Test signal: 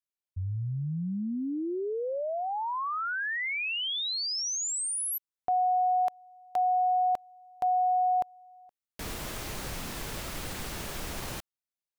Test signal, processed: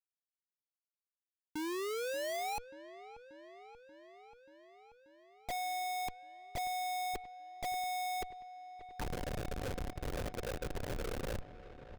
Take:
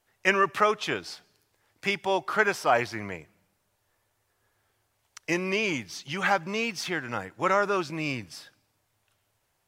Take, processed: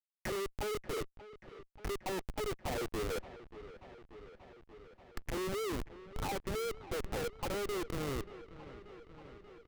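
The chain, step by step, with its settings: dynamic bell 850 Hz, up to +7 dB, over -40 dBFS, Q 1.7; comb 2.3 ms, depth 45%; reverse; compression 10:1, threshold -30 dBFS; reverse; auto-wah 440–2200 Hz, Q 6.5, down, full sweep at -31 dBFS; Schmitt trigger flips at -47.5 dBFS; feedback echo behind a low-pass 584 ms, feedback 73%, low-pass 3.1 kHz, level -15.5 dB; trim +10.5 dB

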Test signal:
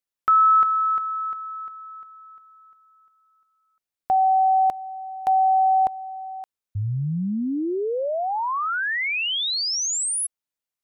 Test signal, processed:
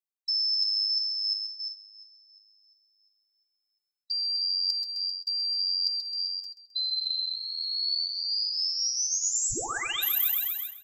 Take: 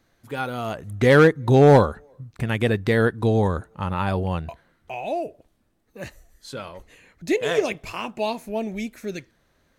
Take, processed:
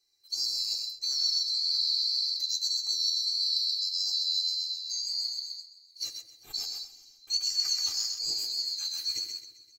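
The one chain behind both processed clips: split-band scrambler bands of 4 kHz; thinning echo 131 ms, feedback 65%, high-pass 430 Hz, level -6 dB; flange 1.7 Hz, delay 5.4 ms, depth 5.7 ms, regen -23%; dynamic bell 1.3 kHz, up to +7 dB, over -40 dBFS, Q 2.7; feedback comb 170 Hz, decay 0.48 s, harmonics all, mix 50%; reverse; compression 16:1, threshold -34 dBFS; reverse; gate -47 dBFS, range -9 dB; treble shelf 5.2 kHz +9 dB; comb 2.5 ms, depth 88%; on a send: filtered feedback delay 85 ms, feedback 76%, low-pass 820 Hz, level -10.5 dB; on the sum: trim +1.5 dB

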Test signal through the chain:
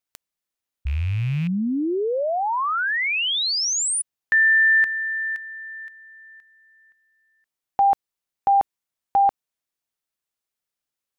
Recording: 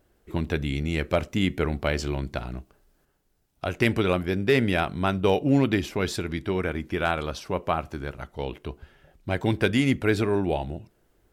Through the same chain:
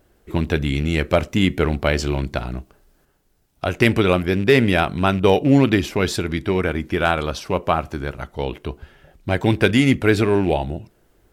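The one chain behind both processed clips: rattle on loud lows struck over -28 dBFS, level -34 dBFS; trim +6.5 dB

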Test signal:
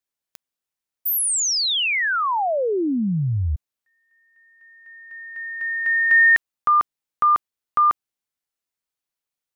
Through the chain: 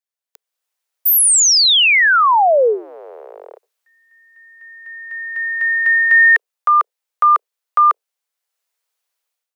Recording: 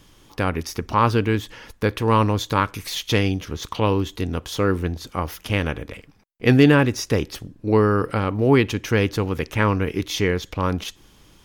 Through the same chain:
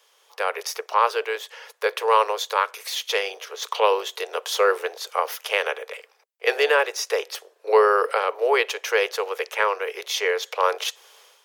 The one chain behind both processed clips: octave divider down 2 oct, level -1 dB; steep high-pass 430 Hz 72 dB/octave; level rider gain up to 15 dB; trim -4.5 dB

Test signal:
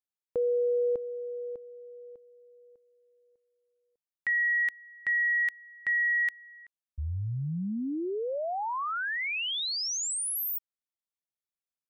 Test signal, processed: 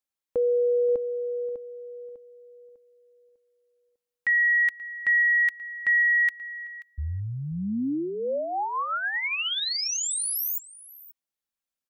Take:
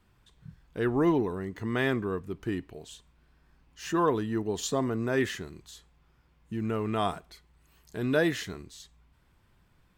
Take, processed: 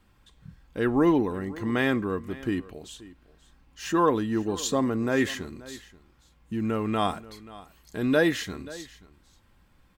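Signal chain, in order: comb 3.7 ms, depth 32%; delay 532 ms -19 dB; trim +3 dB

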